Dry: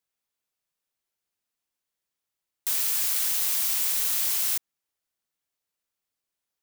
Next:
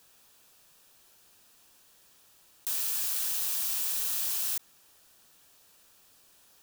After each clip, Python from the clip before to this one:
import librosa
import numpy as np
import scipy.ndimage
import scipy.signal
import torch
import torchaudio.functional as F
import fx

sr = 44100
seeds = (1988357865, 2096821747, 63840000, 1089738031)

y = fx.notch(x, sr, hz=2100.0, q=6.2)
y = fx.env_flatten(y, sr, amount_pct=50)
y = y * 10.0 ** (-5.5 / 20.0)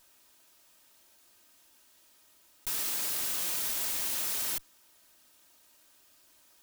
y = fx.lower_of_two(x, sr, delay_ms=3.2)
y = fx.low_shelf(y, sr, hz=61.0, db=-6.0)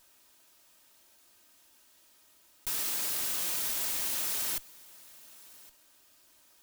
y = x + 10.0 ** (-21.5 / 20.0) * np.pad(x, (int(1115 * sr / 1000.0), 0))[:len(x)]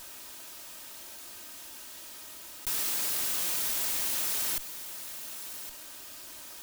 y = fx.env_flatten(x, sr, amount_pct=50)
y = y * 10.0 ** (1.5 / 20.0)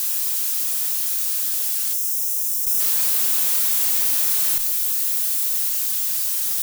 y = x + 0.5 * 10.0 ** (-23.0 / 20.0) * np.diff(np.sign(x), prepend=np.sign(x[:1]))
y = fx.doubler(y, sr, ms=33.0, db=-8.5)
y = fx.spec_box(y, sr, start_s=1.93, length_s=0.87, low_hz=670.0, high_hz=5000.0, gain_db=-10)
y = y * 10.0 ** (2.5 / 20.0)